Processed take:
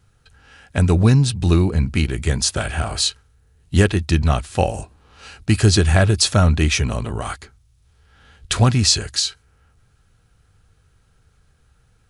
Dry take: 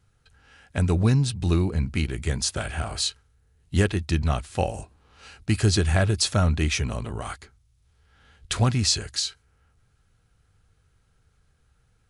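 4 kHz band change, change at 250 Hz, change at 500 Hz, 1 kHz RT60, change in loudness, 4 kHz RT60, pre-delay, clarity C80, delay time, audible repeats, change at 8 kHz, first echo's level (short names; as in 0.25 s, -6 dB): +6.5 dB, +6.5 dB, +6.5 dB, none, +6.5 dB, none, none, none, none, none, +6.5 dB, none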